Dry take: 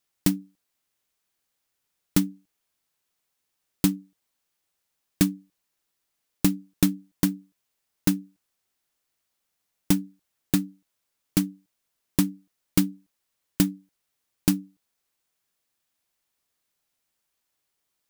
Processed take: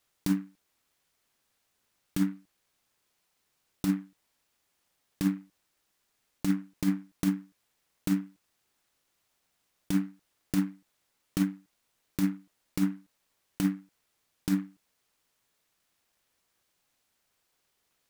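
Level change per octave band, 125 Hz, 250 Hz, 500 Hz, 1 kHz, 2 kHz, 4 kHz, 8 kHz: -5.0 dB, -3.5 dB, -8.0 dB, -4.5 dB, -5.0 dB, -10.0 dB, -11.5 dB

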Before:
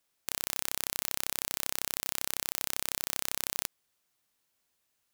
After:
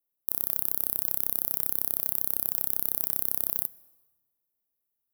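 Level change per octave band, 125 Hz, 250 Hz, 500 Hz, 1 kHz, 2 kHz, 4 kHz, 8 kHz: +2.5 dB, +2.0 dB, -1.0 dB, -5.0 dB, under -10 dB, -13.5 dB, -2.0 dB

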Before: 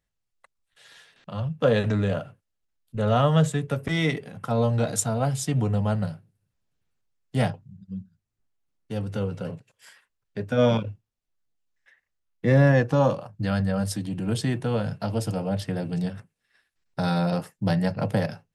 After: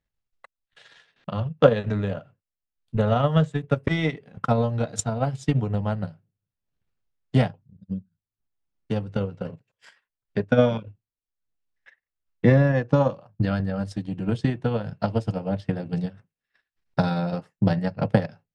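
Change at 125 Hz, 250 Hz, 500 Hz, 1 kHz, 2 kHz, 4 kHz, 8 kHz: +0.5 dB, +1.0 dB, +1.0 dB, 0.0 dB, -0.5 dB, -3.0 dB, -5.5 dB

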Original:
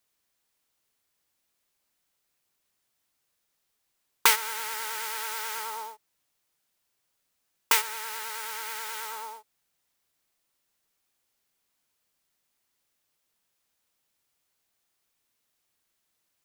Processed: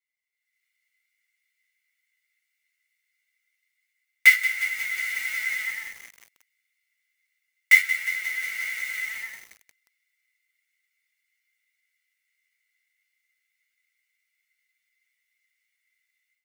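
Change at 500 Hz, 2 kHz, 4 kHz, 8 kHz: under -20 dB, +12.5 dB, -2.5 dB, -5.0 dB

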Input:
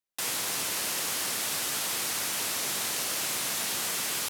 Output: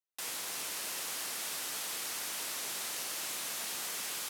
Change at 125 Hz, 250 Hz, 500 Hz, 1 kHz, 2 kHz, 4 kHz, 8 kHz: -14.0 dB, -11.0 dB, -9.0 dB, -8.0 dB, -7.5 dB, -7.5 dB, -7.5 dB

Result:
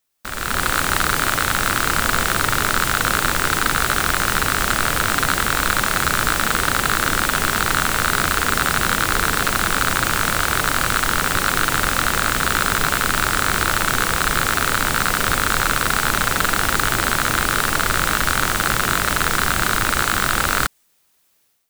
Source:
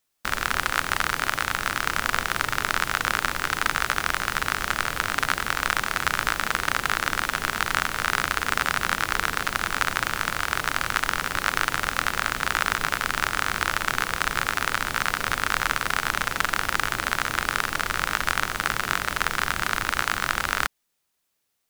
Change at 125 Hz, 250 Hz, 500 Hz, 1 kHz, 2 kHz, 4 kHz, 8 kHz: +11.0 dB, +11.0 dB, +9.0 dB, +6.0 dB, +5.0 dB, +6.5 dB, +10.5 dB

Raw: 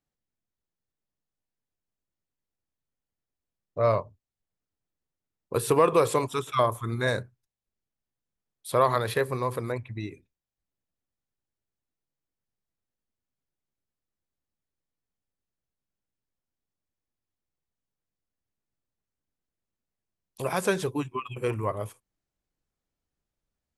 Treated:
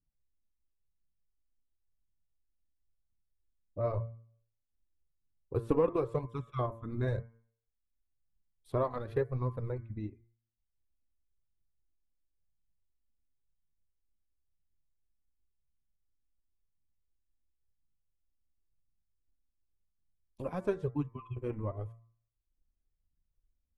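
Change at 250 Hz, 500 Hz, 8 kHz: -4.5 dB, -8.0 dB, under -30 dB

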